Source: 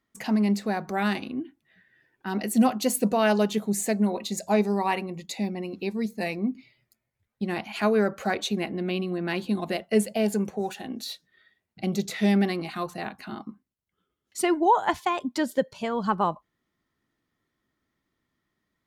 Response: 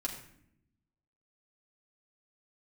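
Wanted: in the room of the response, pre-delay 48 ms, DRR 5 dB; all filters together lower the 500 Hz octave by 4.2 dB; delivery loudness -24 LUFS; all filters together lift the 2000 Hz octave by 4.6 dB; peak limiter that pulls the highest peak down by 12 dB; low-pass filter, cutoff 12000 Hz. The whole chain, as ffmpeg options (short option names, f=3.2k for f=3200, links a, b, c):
-filter_complex "[0:a]lowpass=12k,equalizer=f=500:t=o:g=-6,equalizer=f=2k:t=o:g=6,alimiter=limit=-22dB:level=0:latency=1,asplit=2[a][b];[1:a]atrim=start_sample=2205,adelay=48[c];[b][c]afir=irnorm=-1:irlink=0,volume=-6.5dB[d];[a][d]amix=inputs=2:normalize=0,volume=7dB"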